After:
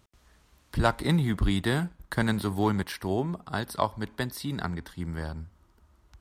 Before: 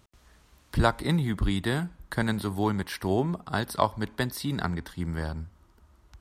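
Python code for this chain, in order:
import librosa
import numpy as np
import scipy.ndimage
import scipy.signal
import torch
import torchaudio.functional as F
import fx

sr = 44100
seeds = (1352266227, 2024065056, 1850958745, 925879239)

y = fx.leveller(x, sr, passes=1, at=(0.85, 2.92))
y = y * librosa.db_to_amplitude(-2.5)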